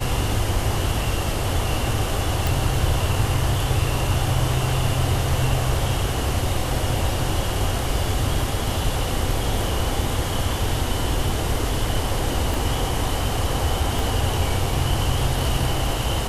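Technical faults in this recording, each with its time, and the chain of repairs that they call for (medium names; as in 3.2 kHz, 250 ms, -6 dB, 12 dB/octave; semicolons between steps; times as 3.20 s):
2.47 s: pop
12.54 s: pop
13.99 s: pop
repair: de-click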